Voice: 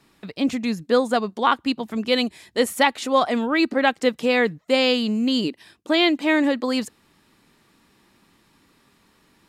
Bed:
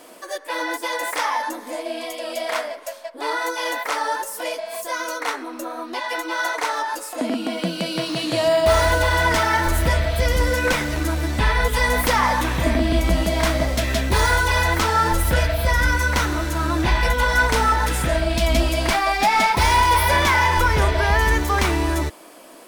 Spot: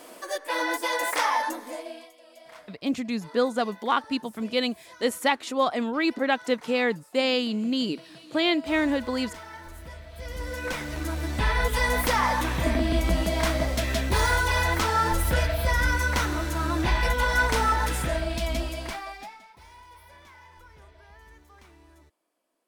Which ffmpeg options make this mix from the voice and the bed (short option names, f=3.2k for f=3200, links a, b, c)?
-filter_complex "[0:a]adelay=2450,volume=-5dB[a];[1:a]volume=17dB,afade=t=out:st=1.4:d=0.71:silence=0.0794328,afade=t=in:st=10.09:d=1.49:silence=0.11885,afade=t=out:st=17.82:d=1.57:silence=0.0354813[b];[a][b]amix=inputs=2:normalize=0"